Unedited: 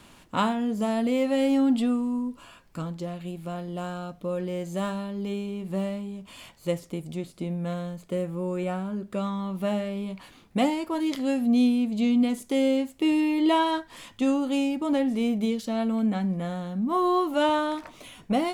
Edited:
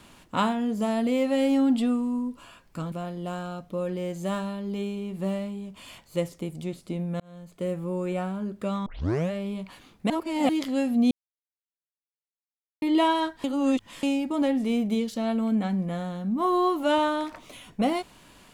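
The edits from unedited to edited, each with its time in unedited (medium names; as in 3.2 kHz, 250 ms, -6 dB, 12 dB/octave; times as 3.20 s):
2.92–3.43 s: delete
7.71–8.23 s: fade in
9.37 s: tape start 0.45 s
10.61–11.00 s: reverse
11.62–13.33 s: mute
13.95–14.54 s: reverse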